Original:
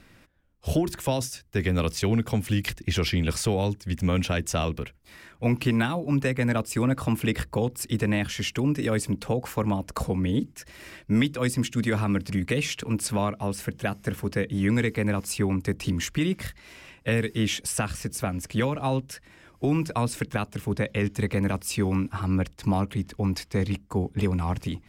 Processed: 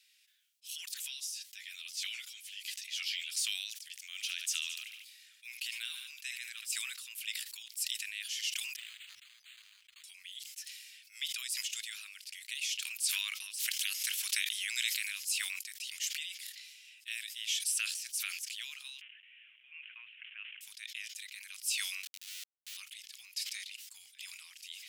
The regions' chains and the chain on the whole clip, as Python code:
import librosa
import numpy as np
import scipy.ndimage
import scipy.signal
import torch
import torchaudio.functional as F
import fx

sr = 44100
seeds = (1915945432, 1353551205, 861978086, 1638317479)

y = fx.chain(x, sr, fx.high_shelf(hz=11000.0, db=-4.0),
    fx.ensemble(), at=(1.08, 3.32))
y = fx.chain(y, sr, fx.highpass(hz=380.0, slope=12),
    fx.notch(hz=510.0, q=14.0),
    fx.echo_feedback(ms=73, feedback_pct=54, wet_db=-16.0), at=(4.0, 6.67))
y = fx.chain(y, sr, fx.clip_hard(threshold_db=-32.0),
    fx.resample_linear(factor=8), at=(8.76, 10.04))
y = fx.spec_clip(y, sr, under_db=21, at=(13.58, 15.17), fade=0.02)
y = fx.pre_swell(y, sr, db_per_s=97.0, at=(13.58, 15.17), fade=0.02)
y = fx.chain(y, sr, fx.crossing_spikes(level_db=-27.5),
    fx.steep_lowpass(hz=3000.0, slope=96), at=(19.01, 20.61))
y = fx.chain(y, sr, fx.lowpass_res(hz=290.0, q=2.7),
    fx.sample_gate(floor_db=-25.0), at=(22.03, 22.77))
y = scipy.signal.sosfilt(scipy.signal.cheby2(4, 70, 640.0, 'highpass', fs=sr, output='sos'), y)
y = fx.sustainer(y, sr, db_per_s=38.0)
y = y * librosa.db_to_amplitude(-2.5)